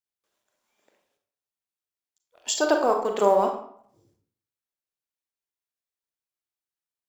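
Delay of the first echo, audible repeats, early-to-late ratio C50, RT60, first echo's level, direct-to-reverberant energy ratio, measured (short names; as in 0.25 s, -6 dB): none, none, 6.5 dB, 0.60 s, none, 3.5 dB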